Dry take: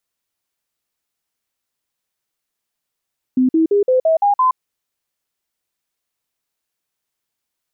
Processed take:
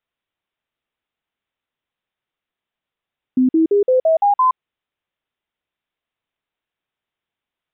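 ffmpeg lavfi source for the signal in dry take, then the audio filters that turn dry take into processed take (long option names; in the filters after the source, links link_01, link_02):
-f lavfi -i "aevalsrc='0.299*clip(min(mod(t,0.17),0.12-mod(t,0.17))/0.005,0,1)*sin(2*PI*256*pow(2,floor(t/0.17)/3)*mod(t,0.17))':duration=1.19:sample_rate=44100"
-af "aresample=8000,aresample=44100"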